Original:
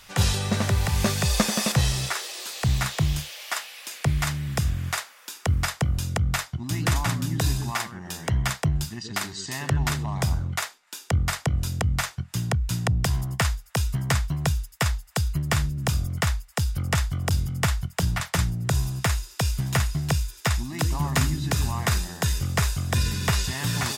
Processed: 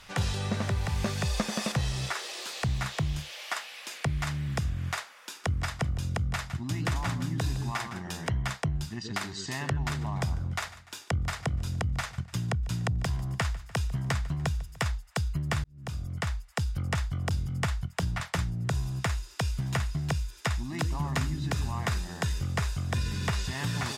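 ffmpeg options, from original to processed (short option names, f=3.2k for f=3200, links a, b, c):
-filter_complex "[0:a]asettb=1/sr,asplit=3[a][b][c];[a]atrim=end=5.164[d];[b]atrim=start=5.16:end=8.29,asetpts=PTS-STARTPTS,afade=t=in:d=0.004:c=qsin,afade=t=out:st=3.126:d=0.004:c=qsin,aecho=1:1:160:0.178,atrim=end_sample=138033[e];[c]atrim=start=8.286[f];[d][e]acrossfade=d=0.004:c1=hsin:c2=qsin[g];[g][f]acrossfade=d=0.004:c1=qsin:c2=hsin,asettb=1/sr,asplit=3[h][i][j];[h]atrim=end=9.854[k];[i]atrim=start=9.85:end=14.91,asetpts=PTS-STARTPTS,afade=t=in:d=0.004:c=qsin,afade=t=out:st=5.056:d=0.004:c=qsin,aecho=1:1:147|294|441:0.0944|0.0425|0.0191,atrim=end_sample=223146[l];[j]atrim=start=14.906[m];[k][l]acrossfade=d=0.004:c1=hsin:c2=qsin[n];[n][m]acrossfade=d=0.004:c1=qsin:c2=hsin,asplit=2[o][p];[o]atrim=end=15.64,asetpts=PTS-STARTPTS,afade=t=out:st=15.636:d=0.004:c=hsin[q];[p]atrim=start=15.64,asetpts=PTS-STARTPTS,afade=t=in:d=0.94[r];[q][r]concat=n=2:v=0:a=1,aemphasis=mode=reproduction:type=50fm,acompressor=threshold=-31dB:ratio=2,highshelf=f=5.7k:g=4.5"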